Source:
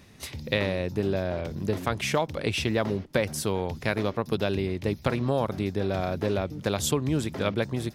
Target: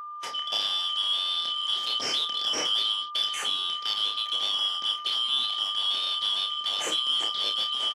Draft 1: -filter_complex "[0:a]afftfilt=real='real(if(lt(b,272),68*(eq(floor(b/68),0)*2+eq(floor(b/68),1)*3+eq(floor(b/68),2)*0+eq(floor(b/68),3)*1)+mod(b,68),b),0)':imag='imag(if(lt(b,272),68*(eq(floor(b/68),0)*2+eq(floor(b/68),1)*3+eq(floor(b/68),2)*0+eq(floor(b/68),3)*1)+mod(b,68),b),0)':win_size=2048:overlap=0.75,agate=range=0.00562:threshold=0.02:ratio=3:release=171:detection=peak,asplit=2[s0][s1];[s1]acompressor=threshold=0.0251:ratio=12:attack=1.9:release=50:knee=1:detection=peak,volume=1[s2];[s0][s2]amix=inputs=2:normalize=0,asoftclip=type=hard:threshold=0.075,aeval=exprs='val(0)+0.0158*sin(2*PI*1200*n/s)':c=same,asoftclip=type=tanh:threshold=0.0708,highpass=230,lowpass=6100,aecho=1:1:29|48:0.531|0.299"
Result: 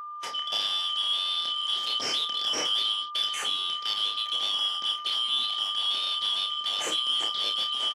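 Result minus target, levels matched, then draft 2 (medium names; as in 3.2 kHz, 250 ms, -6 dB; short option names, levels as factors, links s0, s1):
hard clipper: distortion +19 dB
-filter_complex "[0:a]afftfilt=real='real(if(lt(b,272),68*(eq(floor(b/68),0)*2+eq(floor(b/68),1)*3+eq(floor(b/68),2)*0+eq(floor(b/68),3)*1)+mod(b,68),b),0)':imag='imag(if(lt(b,272),68*(eq(floor(b/68),0)*2+eq(floor(b/68),1)*3+eq(floor(b/68),2)*0+eq(floor(b/68),3)*1)+mod(b,68),b),0)':win_size=2048:overlap=0.75,agate=range=0.00562:threshold=0.02:ratio=3:release=171:detection=peak,asplit=2[s0][s1];[s1]acompressor=threshold=0.0251:ratio=12:attack=1.9:release=50:knee=1:detection=peak,volume=1[s2];[s0][s2]amix=inputs=2:normalize=0,asoftclip=type=hard:threshold=0.266,aeval=exprs='val(0)+0.0158*sin(2*PI*1200*n/s)':c=same,asoftclip=type=tanh:threshold=0.0708,highpass=230,lowpass=6100,aecho=1:1:29|48:0.531|0.299"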